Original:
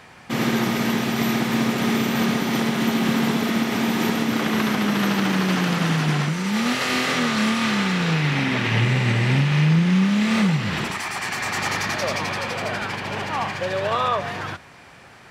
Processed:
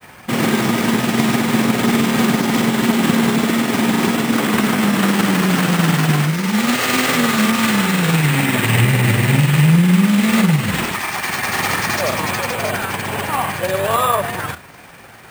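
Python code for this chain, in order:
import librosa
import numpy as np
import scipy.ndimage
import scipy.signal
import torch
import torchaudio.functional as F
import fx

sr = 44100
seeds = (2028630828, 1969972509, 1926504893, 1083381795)

y = fx.granulator(x, sr, seeds[0], grain_ms=93.0, per_s=20.0, spray_ms=19.0, spread_st=0)
y = np.repeat(y[::4], 4)[:len(y)]
y = F.gain(torch.from_numpy(y), 7.0).numpy()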